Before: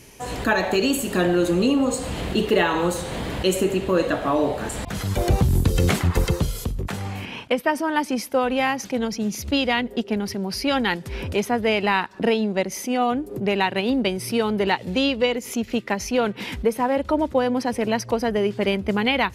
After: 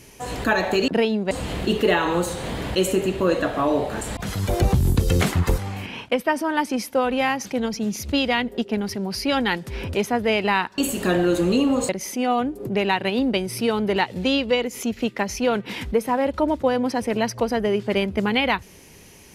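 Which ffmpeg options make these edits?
ffmpeg -i in.wav -filter_complex "[0:a]asplit=6[link_01][link_02][link_03][link_04][link_05][link_06];[link_01]atrim=end=0.882[link_07];[link_02]atrim=start=12.168:end=12.602[link_08];[link_03]atrim=start=1.988:end=6.262[link_09];[link_04]atrim=start=6.968:end=12.172[link_10];[link_05]atrim=start=0.878:end=1.992[link_11];[link_06]atrim=start=12.598[link_12];[link_07][link_08]acrossfade=duration=0.004:curve1=hsin:curve2=hsin[link_13];[link_13][link_09]acrossfade=duration=0.004:curve1=hsin:curve2=hsin[link_14];[link_14][link_10]acrossfade=duration=0.004:curve1=hsin:curve2=hsin[link_15];[link_15][link_11]acrossfade=duration=0.004:curve1=hsin:curve2=hsin[link_16];[link_16][link_12]acrossfade=duration=0.004:curve1=hsin:curve2=hsin" out.wav

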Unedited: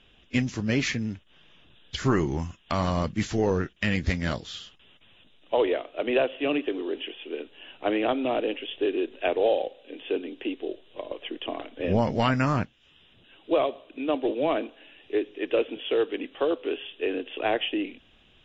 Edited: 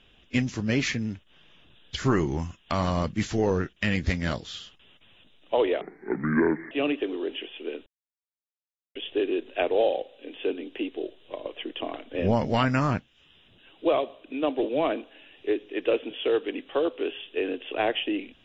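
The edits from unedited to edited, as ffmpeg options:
ffmpeg -i in.wav -filter_complex "[0:a]asplit=5[link_01][link_02][link_03][link_04][link_05];[link_01]atrim=end=5.814[link_06];[link_02]atrim=start=5.81:end=6.37,asetpts=PTS-STARTPTS,asetrate=27342,aresample=44100,atrim=end_sample=39832,asetpts=PTS-STARTPTS[link_07];[link_03]atrim=start=6.366:end=7.52,asetpts=PTS-STARTPTS,afade=type=out:start_time=1.15:duration=0.004:curve=hsin[link_08];[link_04]atrim=start=7.52:end=8.61,asetpts=PTS-STARTPTS,volume=0[link_09];[link_05]atrim=start=8.61,asetpts=PTS-STARTPTS,afade=type=in:duration=0.004:curve=hsin[link_10];[link_06][link_07]acrossfade=duration=0.004:curve1=hsin:curve2=hsin[link_11];[link_08][link_09][link_10]concat=n=3:v=0:a=1[link_12];[link_11][link_12]acrossfade=duration=0.004:curve1=hsin:curve2=hsin" out.wav

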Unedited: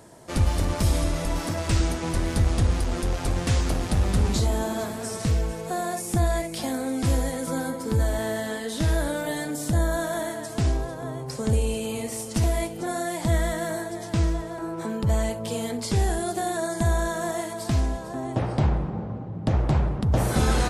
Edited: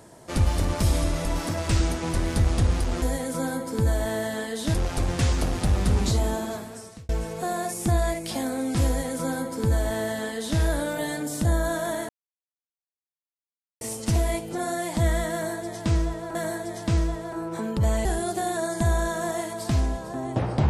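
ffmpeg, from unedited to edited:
ffmpeg -i in.wav -filter_complex "[0:a]asplit=8[link_01][link_02][link_03][link_04][link_05][link_06][link_07][link_08];[link_01]atrim=end=3.022[link_09];[link_02]atrim=start=7.148:end=8.872[link_10];[link_03]atrim=start=3.018:end=5.37,asetpts=PTS-STARTPTS,afade=type=out:start_time=1.532:duration=0.82[link_11];[link_04]atrim=start=5.37:end=10.37,asetpts=PTS-STARTPTS,afade=type=in:duration=0.004:curve=hsin,afade=type=out:start_time=4.996:duration=0.004:curve=hsin[link_12];[link_05]atrim=start=10.37:end=12.09,asetpts=PTS-STARTPTS,volume=0[link_13];[link_06]atrim=start=12.09:end=14.632,asetpts=PTS-STARTPTS,afade=type=in:duration=0.004:curve=hsin[link_14];[link_07]atrim=start=13.608:end=15.312[link_15];[link_08]atrim=start=16.048[link_16];[link_09][link_10]acrossfade=duration=0.004:curve1=hsin:curve2=hsin[link_17];[link_11][link_12][link_13][link_14]concat=n=4:v=0:a=1[link_18];[link_17][link_18]acrossfade=duration=0.004:curve1=hsin:curve2=hsin[link_19];[link_19][link_15]acrossfade=duration=0.004:curve1=hsin:curve2=hsin[link_20];[link_20][link_16]acrossfade=duration=0.004:curve1=hsin:curve2=hsin" out.wav

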